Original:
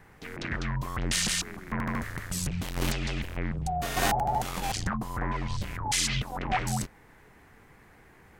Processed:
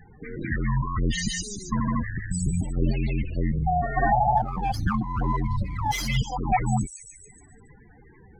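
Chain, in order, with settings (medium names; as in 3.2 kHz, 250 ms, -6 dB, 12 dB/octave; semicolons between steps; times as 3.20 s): feedback echo behind a high-pass 143 ms, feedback 65%, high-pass 3.3 kHz, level -5.5 dB; loudest bins only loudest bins 16; 4.37–6.17 s: sliding maximum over 3 samples; trim +7 dB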